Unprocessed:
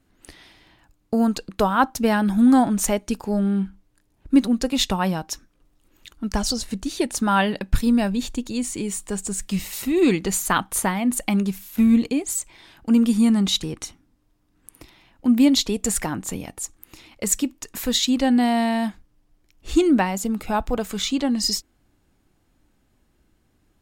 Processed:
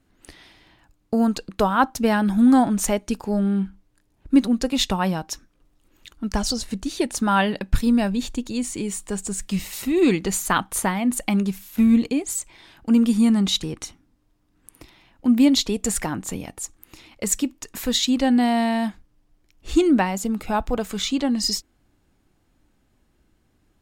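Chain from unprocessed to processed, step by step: treble shelf 9.9 kHz -3.5 dB

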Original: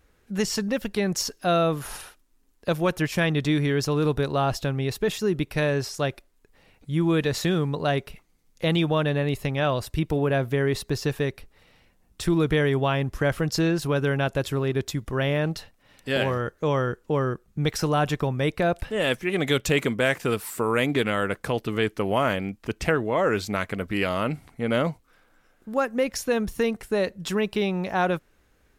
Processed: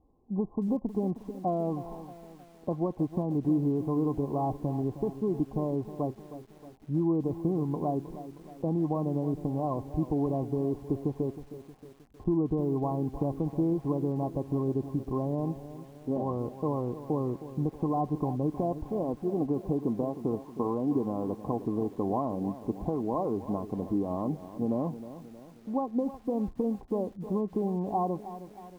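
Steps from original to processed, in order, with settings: compression 3:1, threshold -24 dBFS, peak gain reduction 6 dB; rippled Chebyshev low-pass 1.1 kHz, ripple 9 dB; bit-crushed delay 314 ms, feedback 55%, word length 9-bit, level -13 dB; trim +3 dB

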